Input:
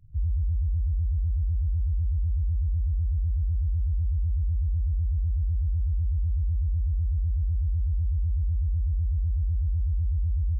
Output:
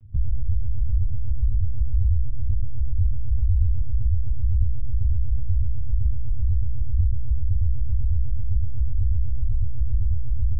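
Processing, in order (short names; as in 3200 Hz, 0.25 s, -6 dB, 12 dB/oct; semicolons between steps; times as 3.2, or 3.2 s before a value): dynamic EQ 150 Hz, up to +5 dB, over -44 dBFS, Q 1.5; monotone LPC vocoder at 8 kHz 120 Hz; gain +6.5 dB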